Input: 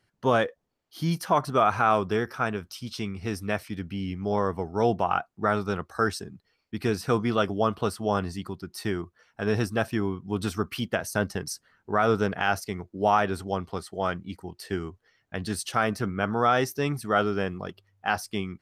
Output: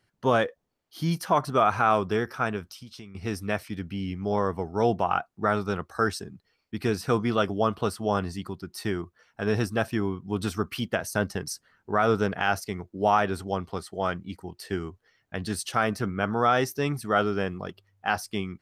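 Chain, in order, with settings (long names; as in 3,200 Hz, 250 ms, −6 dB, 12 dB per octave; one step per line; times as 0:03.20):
0:02.63–0:03.15: downward compressor 5 to 1, threshold −42 dBFS, peak gain reduction 14 dB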